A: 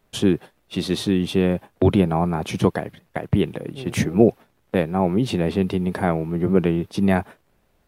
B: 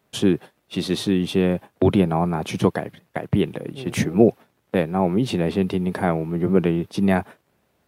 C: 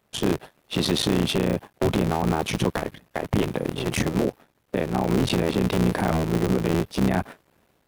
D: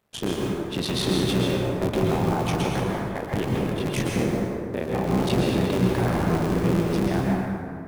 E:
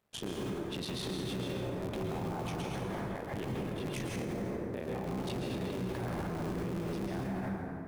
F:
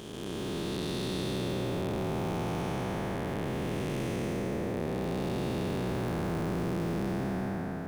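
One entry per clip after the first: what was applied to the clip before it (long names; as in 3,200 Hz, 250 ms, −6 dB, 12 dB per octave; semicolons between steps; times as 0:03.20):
high-pass filter 94 Hz
sub-harmonics by changed cycles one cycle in 3, muted; automatic gain control; brickwall limiter −12 dBFS, peak gain reduction 11 dB
dense smooth reverb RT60 2.3 s, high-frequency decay 0.45×, pre-delay 105 ms, DRR −2.5 dB; level −4.5 dB
brickwall limiter −22 dBFS, peak gain reduction 11.5 dB; level −6.5 dB
spectrum smeared in time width 645 ms; level +6 dB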